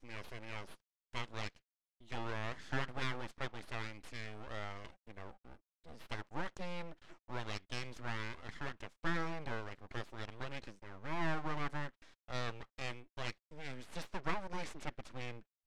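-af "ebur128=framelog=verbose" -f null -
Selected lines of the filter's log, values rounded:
Integrated loudness:
  I:         -44.1 LUFS
  Threshold: -54.4 LUFS
Loudness range:
  LRA:         4.8 LU
  Threshold: -64.3 LUFS
  LRA low:   -47.6 LUFS
  LRA high:  -42.8 LUFS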